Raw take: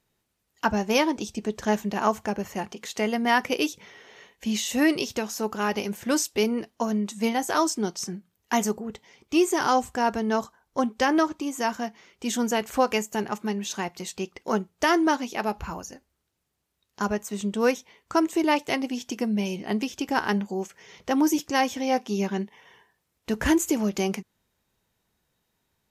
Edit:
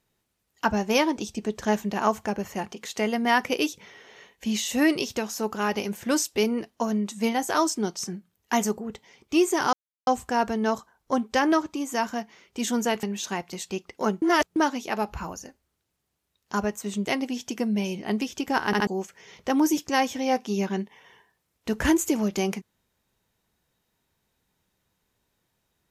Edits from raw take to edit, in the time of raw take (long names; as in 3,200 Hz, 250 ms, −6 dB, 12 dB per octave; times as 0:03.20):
0:09.73: splice in silence 0.34 s
0:12.69–0:13.50: remove
0:14.69–0:15.03: reverse
0:17.52–0:18.66: remove
0:20.27: stutter in place 0.07 s, 3 plays